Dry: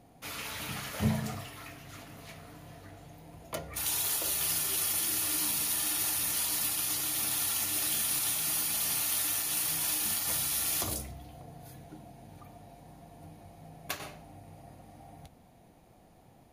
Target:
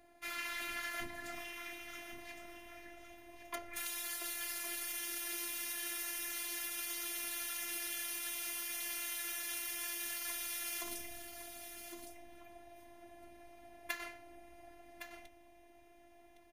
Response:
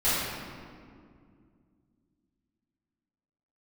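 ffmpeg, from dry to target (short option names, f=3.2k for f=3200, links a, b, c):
-filter_complex "[0:a]acompressor=threshold=-33dB:ratio=6,afftfilt=real='hypot(re,im)*cos(PI*b)':imag='0':win_size=512:overlap=0.75,equalizer=f=1.9k:w=1.6:g=11.5,asplit=2[a][b];[b]aecho=0:1:1112:0.335[c];[a][c]amix=inputs=2:normalize=0,volume=-3dB"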